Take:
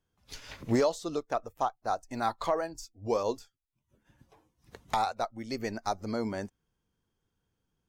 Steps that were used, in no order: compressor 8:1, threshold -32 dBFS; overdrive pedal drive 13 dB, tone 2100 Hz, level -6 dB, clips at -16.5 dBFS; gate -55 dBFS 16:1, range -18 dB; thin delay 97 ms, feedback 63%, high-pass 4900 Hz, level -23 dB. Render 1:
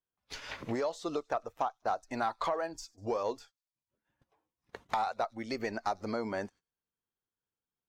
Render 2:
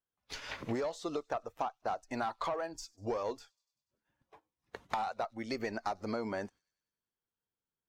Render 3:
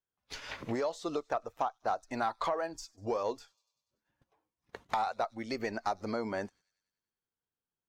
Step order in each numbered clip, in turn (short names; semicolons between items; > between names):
compressor > thin delay > gate > overdrive pedal; overdrive pedal > compressor > gate > thin delay; gate > thin delay > compressor > overdrive pedal